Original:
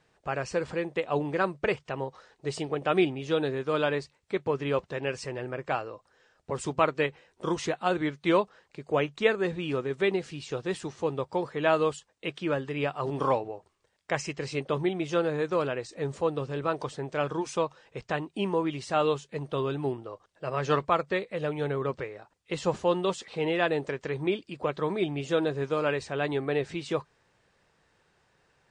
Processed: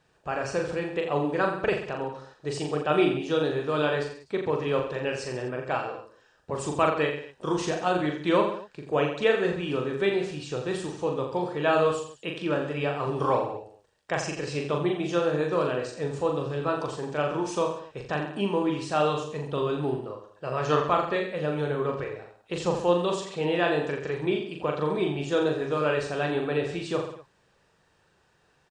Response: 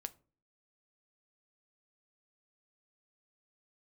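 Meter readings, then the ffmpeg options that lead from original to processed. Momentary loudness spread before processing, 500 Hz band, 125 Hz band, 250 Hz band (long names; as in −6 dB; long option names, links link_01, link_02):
9 LU, +2.0 dB, +2.0 dB, +2.0 dB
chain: -filter_complex "[0:a]bandreject=frequency=2100:width=9.8,asplit=2[link_01][link_02];[link_02]aecho=0:1:40|84|132.4|185.6|244.2:0.631|0.398|0.251|0.158|0.1[link_03];[link_01][link_03]amix=inputs=2:normalize=0"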